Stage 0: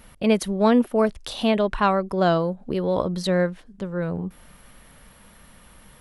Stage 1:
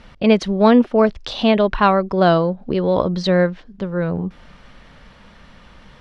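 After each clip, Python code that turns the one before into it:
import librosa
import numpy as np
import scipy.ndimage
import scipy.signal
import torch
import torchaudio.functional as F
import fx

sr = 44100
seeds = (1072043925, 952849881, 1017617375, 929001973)

y = scipy.signal.sosfilt(scipy.signal.butter(4, 5500.0, 'lowpass', fs=sr, output='sos'), x)
y = y * 10.0 ** (5.5 / 20.0)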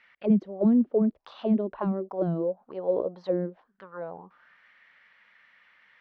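y = fx.auto_wah(x, sr, base_hz=200.0, top_hz=2100.0, q=4.0, full_db=-9.0, direction='down')
y = y * 10.0 ** (-2.5 / 20.0)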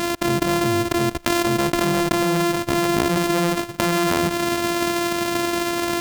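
y = np.r_[np.sort(x[:len(x) // 128 * 128].reshape(-1, 128), axis=1).ravel(), x[len(x) // 128 * 128:]]
y = fx.env_flatten(y, sr, amount_pct=100)
y = y * 10.0 ** (-2.5 / 20.0)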